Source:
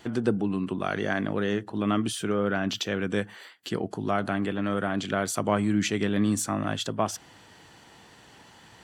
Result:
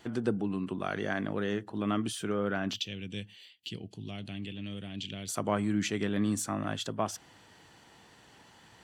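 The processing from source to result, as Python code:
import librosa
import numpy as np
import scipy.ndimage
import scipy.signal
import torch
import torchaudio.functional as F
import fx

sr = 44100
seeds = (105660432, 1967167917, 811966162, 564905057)

y = fx.curve_eq(x, sr, hz=(110.0, 1400.0, 2800.0, 8300.0), db=(0, -23, 5, -6), at=(2.76, 5.29))
y = y * 10.0 ** (-5.0 / 20.0)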